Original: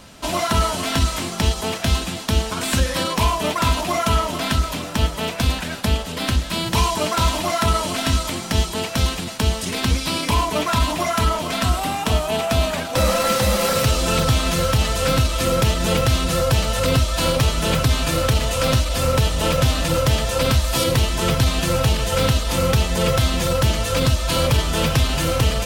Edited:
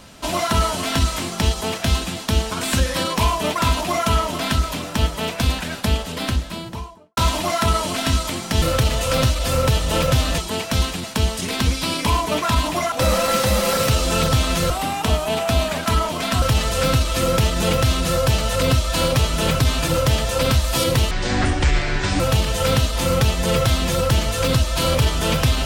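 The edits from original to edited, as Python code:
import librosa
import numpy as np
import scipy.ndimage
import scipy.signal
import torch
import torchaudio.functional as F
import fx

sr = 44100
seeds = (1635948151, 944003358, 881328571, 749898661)

y = fx.studio_fade_out(x, sr, start_s=6.07, length_s=1.1)
y = fx.edit(y, sr, fx.swap(start_s=11.16, length_s=0.56, other_s=12.88, other_length_s=1.78),
    fx.move(start_s=18.12, length_s=1.76, to_s=8.62),
    fx.speed_span(start_s=21.11, length_s=0.61, speed=0.56), tone=tone)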